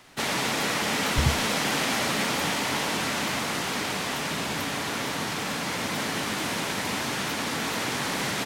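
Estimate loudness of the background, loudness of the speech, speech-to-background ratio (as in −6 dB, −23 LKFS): −27.0 LKFS, −31.5 LKFS, −4.5 dB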